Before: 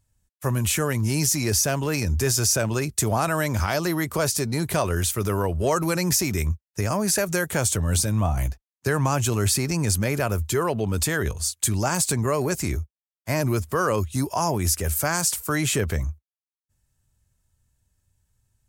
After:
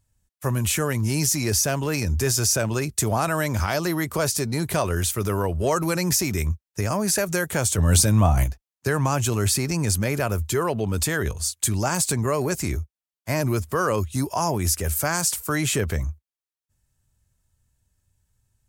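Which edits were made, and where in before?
0:07.78–0:08.44: clip gain +5 dB

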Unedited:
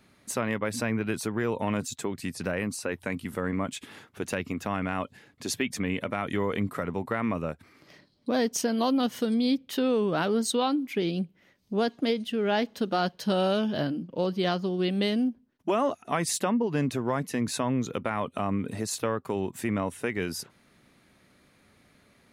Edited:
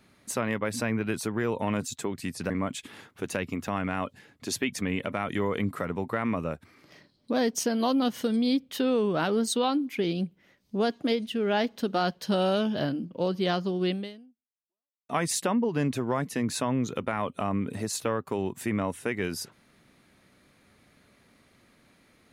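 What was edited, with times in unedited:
0:02.50–0:03.48: remove
0:14.90–0:16.07: fade out exponential

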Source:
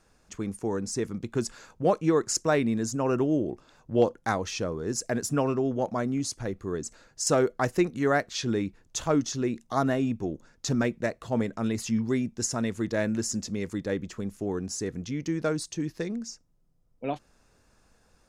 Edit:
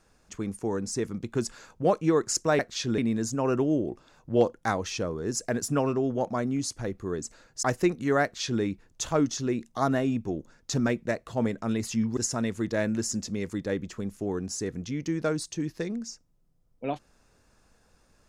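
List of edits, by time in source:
0:07.24–0:07.58: remove
0:08.18–0:08.57: duplicate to 0:02.59
0:12.12–0:12.37: remove

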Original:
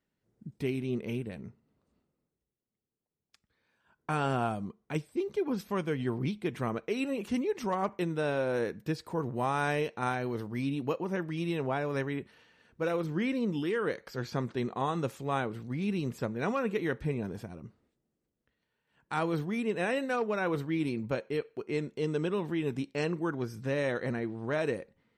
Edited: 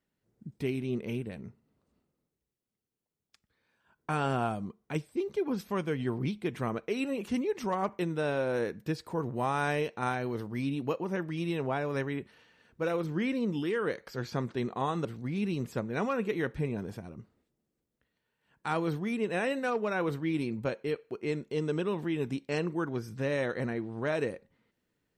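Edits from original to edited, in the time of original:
0:15.05–0:15.51: remove

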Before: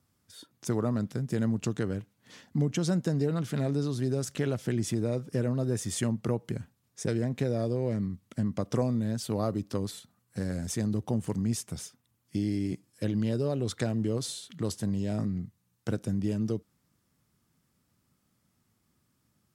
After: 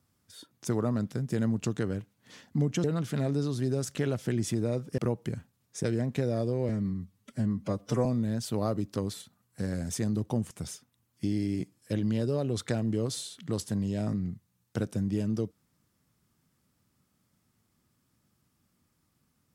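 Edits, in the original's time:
0:02.84–0:03.24: remove
0:05.38–0:06.21: remove
0:07.92–0:08.83: time-stretch 1.5×
0:11.28–0:11.62: remove

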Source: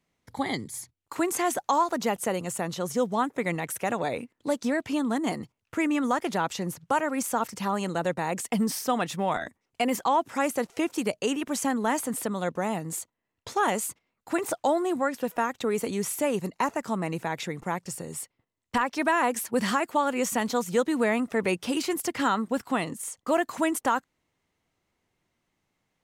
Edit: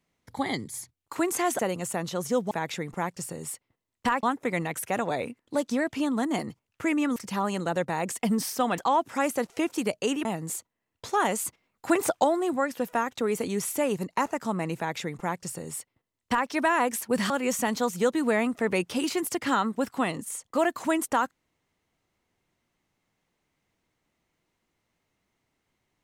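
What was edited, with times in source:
0:01.59–0:02.24: remove
0:06.09–0:07.45: remove
0:09.07–0:09.98: remove
0:11.45–0:12.68: remove
0:13.88–0:14.67: clip gain +4 dB
0:17.20–0:18.92: duplicate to 0:03.16
0:19.73–0:20.03: remove

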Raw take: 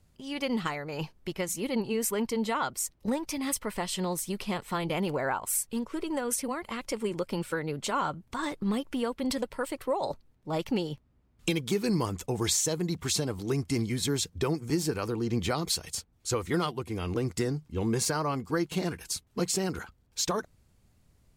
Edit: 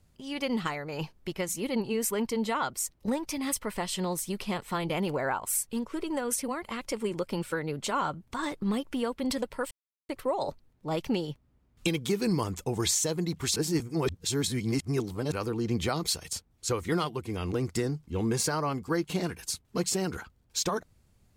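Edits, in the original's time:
0:09.71: splice in silence 0.38 s
0:13.18–0:14.94: reverse

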